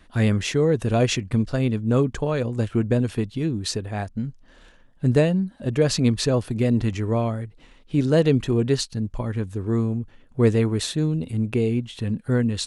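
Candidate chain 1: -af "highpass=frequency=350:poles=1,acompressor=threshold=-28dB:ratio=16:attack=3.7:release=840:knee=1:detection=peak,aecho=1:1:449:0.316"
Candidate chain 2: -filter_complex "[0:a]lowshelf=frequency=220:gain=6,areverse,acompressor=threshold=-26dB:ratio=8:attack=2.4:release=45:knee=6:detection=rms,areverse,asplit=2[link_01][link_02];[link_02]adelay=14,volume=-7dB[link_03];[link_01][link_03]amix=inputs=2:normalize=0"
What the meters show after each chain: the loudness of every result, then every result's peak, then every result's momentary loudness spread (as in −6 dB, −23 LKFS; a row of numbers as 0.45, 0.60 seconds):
−36.5, −31.0 LKFS; −18.5, −17.5 dBFS; 5, 4 LU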